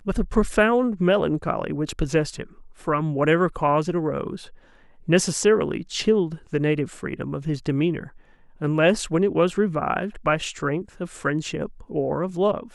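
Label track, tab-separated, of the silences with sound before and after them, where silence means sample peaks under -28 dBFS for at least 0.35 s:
2.430000	2.870000	silence
4.360000	5.080000	silence
8.040000	8.620000	silence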